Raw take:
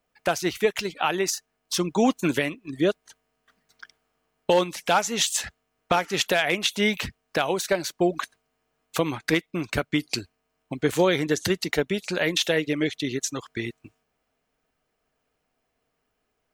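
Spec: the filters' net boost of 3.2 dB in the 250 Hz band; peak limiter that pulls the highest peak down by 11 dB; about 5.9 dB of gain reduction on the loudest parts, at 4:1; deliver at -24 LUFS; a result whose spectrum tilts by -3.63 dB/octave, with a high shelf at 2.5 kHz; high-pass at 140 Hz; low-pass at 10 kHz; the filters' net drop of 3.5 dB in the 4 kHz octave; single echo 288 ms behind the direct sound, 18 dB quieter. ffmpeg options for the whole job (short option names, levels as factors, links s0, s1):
-af "highpass=140,lowpass=10000,equalizer=f=250:t=o:g=5,highshelf=f=2500:g=5,equalizer=f=4000:t=o:g=-9,acompressor=threshold=0.0891:ratio=4,alimiter=limit=0.106:level=0:latency=1,aecho=1:1:288:0.126,volume=2.24"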